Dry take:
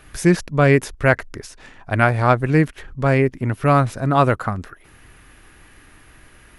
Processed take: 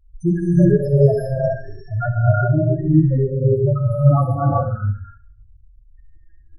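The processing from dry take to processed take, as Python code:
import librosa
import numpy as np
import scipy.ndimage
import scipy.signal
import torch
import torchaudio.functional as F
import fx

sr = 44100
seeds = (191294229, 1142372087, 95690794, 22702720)

y = fx.spec_topn(x, sr, count=2)
y = fx.echo_feedback(y, sr, ms=68, feedback_pct=38, wet_db=-13)
y = fx.rev_gated(y, sr, seeds[0], gate_ms=440, shape='rising', drr_db=-5.5)
y = y * 10.0 ** (1.0 / 20.0)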